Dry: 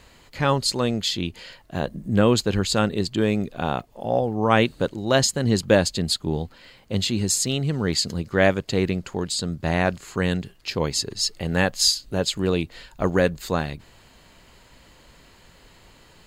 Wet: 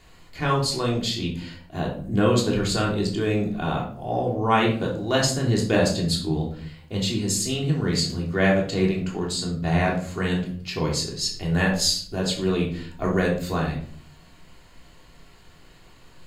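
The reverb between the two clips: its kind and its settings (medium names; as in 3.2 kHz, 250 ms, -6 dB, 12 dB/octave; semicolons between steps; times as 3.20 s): simulated room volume 590 m³, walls furnished, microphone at 3.3 m; trim -6 dB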